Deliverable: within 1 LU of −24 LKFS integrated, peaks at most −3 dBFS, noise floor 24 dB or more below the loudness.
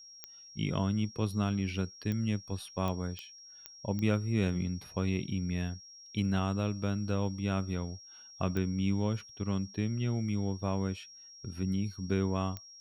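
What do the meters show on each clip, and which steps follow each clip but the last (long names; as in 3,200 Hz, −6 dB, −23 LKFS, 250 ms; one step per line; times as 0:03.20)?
number of clicks 8; interfering tone 5,600 Hz; level of the tone −50 dBFS; integrated loudness −33.5 LKFS; sample peak −15.5 dBFS; target loudness −24.0 LKFS
→ click removal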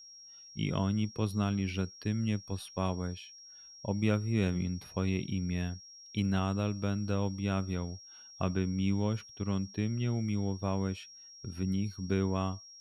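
number of clicks 0; interfering tone 5,600 Hz; level of the tone −50 dBFS
→ notch filter 5,600 Hz, Q 30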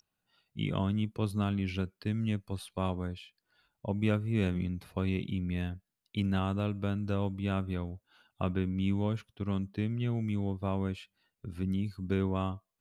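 interfering tone none found; integrated loudness −33.5 LKFS; sample peak −15.5 dBFS; target loudness −24.0 LKFS
→ level +9.5 dB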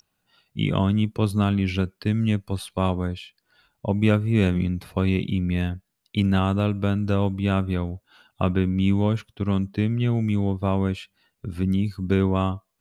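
integrated loudness −24.0 LKFS; sample peak −6.0 dBFS; background noise floor −77 dBFS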